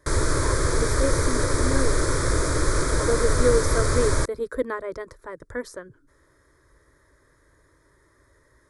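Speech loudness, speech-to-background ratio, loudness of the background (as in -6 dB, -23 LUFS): -29.0 LUFS, -5.0 dB, -24.0 LUFS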